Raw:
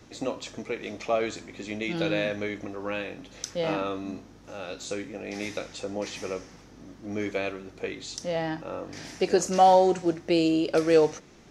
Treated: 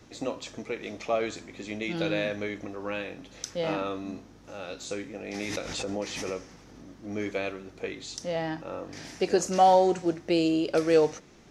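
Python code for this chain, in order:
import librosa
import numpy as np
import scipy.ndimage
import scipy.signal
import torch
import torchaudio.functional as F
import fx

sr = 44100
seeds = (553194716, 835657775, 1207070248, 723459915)

y = fx.pre_swell(x, sr, db_per_s=32.0, at=(5.34, 6.86))
y = y * librosa.db_to_amplitude(-1.5)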